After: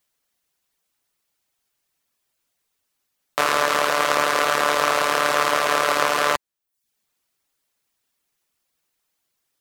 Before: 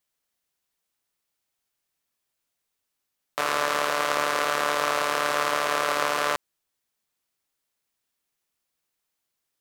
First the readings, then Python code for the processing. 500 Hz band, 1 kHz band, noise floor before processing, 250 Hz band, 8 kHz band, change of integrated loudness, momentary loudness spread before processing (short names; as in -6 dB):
+5.0 dB, +5.0 dB, -81 dBFS, +5.0 dB, +5.0 dB, +5.0 dB, 4 LU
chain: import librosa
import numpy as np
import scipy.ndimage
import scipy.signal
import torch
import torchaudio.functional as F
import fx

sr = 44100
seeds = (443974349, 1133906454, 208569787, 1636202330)

y = fx.dereverb_blind(x, sr, rt60_s=0.51)
y = y * 10.0 ** (6.5 / 20.0)